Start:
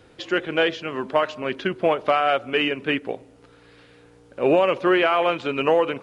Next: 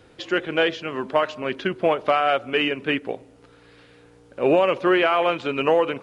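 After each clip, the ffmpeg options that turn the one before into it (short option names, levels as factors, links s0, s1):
-af anull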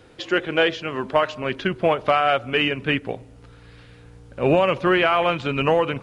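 -af "asubboost=boost=5.5:cutoff=150,volume=1.26"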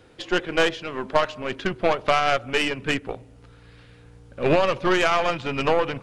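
-af "aeval=exprs='0.562*(cos(1*acos(clip(val(0)/0.562,-1,1)))-cos(1*PI/2))+0.0501*(cos(3*acos(clip(val(0)/0.562,-1,1)))-cos(3*PI/2))+0.0562*(cos(6*acos(clip(val(0)/0.562,-1,1)))-cos(6*PI/2))':c=same"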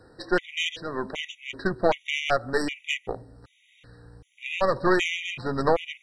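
-af "afftfilt=real='re*gt(sin(2*PI*1.3*pts/sr)*(1-2*mod(floor(b*sr/1024/1900),2)),0)':imag='im*gt(sin(2*PI*1.3*pts/sr)*(1-2*mod(floor(b*sr/1024/1900),2)),0)':win_size=1024:overlap=0.75"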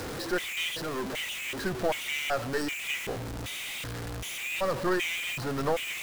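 -af "aeval=exprs='val(0)+0.5*0.075*sgn(val(0))':c=same,volume=0.376"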